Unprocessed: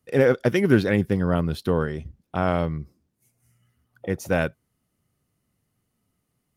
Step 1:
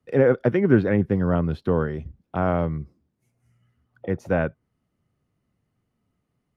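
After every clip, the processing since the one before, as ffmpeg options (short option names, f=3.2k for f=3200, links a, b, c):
-filter_complex "[0:a]aemphasis=mode=reproduction:type=75fm,acrossover=split=160|2300[a][b][c];[c]acompressor=threshold=-51dB:ratio=6[d];[a][b][d]amix=inputs=3:normalize=0"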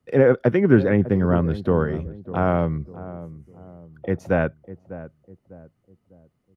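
-filter_complex "[0:a]asplit=2[a][b];[b]adelay=600,lowpass=f=800:p=1,volume=-14dB,asplit=2[c][d];[d]adelay=600,lowpass=f=800:p=1,volume=0.42,asplit=2[e][f];[f]adelay=600,lowpass=f=800:p=1,volume=0.42,asplit=2[g][h];[h]adelay=600,lowpass=f=800:p=1,volume=0.42[i];[a][c][e][g][i]amix=inputs=5:normalize=0,volume=2dB"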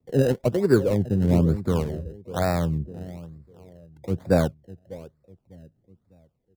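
-filter_complex "[0:a]acrossover=split=760[a][b];[a]aphaser=in_gain=1:out_gain=1:delay=2.4:decay=0.49:speed=0.69:type=triangular[c];[b]acrusher=samples=27:mix=1:aa=0.000001:lfo=1:lforange=27:lforate=1.1[d];[c][d]amix=inputs=2:normalize=0,volume=-3.5dB"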